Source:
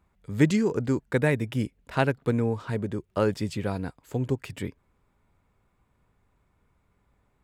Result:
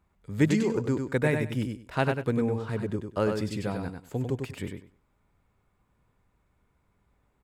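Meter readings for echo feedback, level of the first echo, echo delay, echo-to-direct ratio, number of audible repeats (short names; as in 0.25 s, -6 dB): 19%, -5.5 dB, 98 ms, -5.5 dB, 3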